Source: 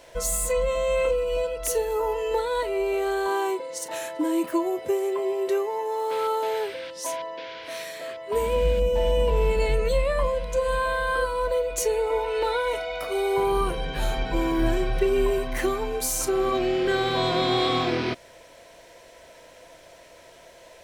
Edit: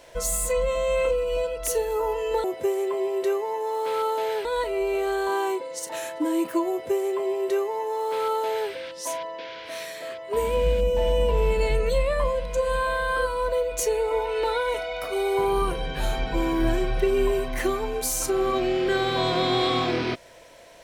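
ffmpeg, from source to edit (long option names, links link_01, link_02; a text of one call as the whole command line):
ffmpeg -i in.wav -filter_complex "[0:a]asplit=3[link_01][link_02][link_03];[link_01]atrim=end=2.442[link_04];[link_02]atrim=start=4.688:end=6.702[link_05];[link_03]atrim=start=2.438[link_06];[link_04][link_05]acrossfade=duration=0.004:curve1=hsin:curve2=hsin[link_07];[link_07][link_06]acrossfade=duration=0.004:curve1=hsin:curve2=hsin" out.wav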